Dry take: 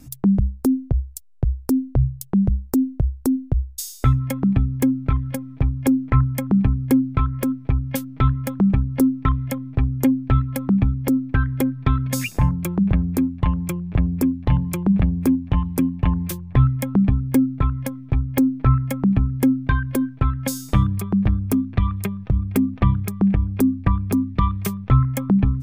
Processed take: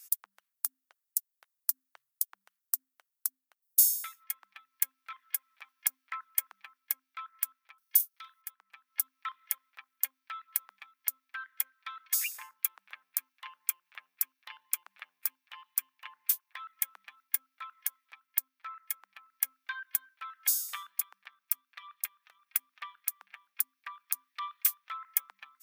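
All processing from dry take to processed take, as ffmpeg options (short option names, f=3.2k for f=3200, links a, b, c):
-filter_complex "[0:a]asettb=1/sr,asplit=3[a][b][c];[a]atrim=end=3.624[d];[b]atrim=start=3.62:end=4.24,asetpts=PTS-STARTPTS,afade=t=in:d=0.004:c=qsin,afade=t=out:st=0.616:d=0.004:c=qsin,highshelf=f=5.7k:g=11.5,bandreject=f=60:t=h:w=6,bandreject=f=120:t=h:w=6,bandreject=f=180:t=h:w=6,bandreject=f=240:t=h:w=6,bandreject=f=300:t=h:w=6,bandreject=f=360:t=h:w=6,bandreject=f=420:t=h:w=6,aecho=1:1:4.3:0.54,atrim=end_sample=27342[e];[c]atrim=start=4.236[f];[d][e]acrossfade=d=0.004:c1=hsin:c2=qsin[g];[g][f]acrossfade=d=0.004:c1=qsin:c2=hsin,asettb=1/sr,asplit=3[h][i][j];[h]atrim=end=7.784[k];[i]atrim=start=7.78:end=8.42,asetpts=PTS-STARTPTS,afade=t=in:d=0.004:c=qsin,afade=t=out:st=0.636:d=0.004:c=qsin,bass=f=250:g=5,treble=f=4k:g=15,bandreject=f=7.5k:w=14,asplit=2[l][m];[m]adelay=43,volume=-12dB[n];[l][n]amix=inputs=2:normalize=0,atrim=end_sample=28224[o];[j]atrim=start=8.416[p];[k][o]acrossfade=d=0.004:c1=hsin:c2=qsin[q];[q][p]acrossfade=d=0.004:c1=qsin:c2=hsin,highpass=f=1.3k:w=0.5412,highpass=f=1.3k:w=1.3066,aemphasis=mode=production:type=50fm,dynaudnorm=f=360:g=3:m=11.5dB,volume=-7dB"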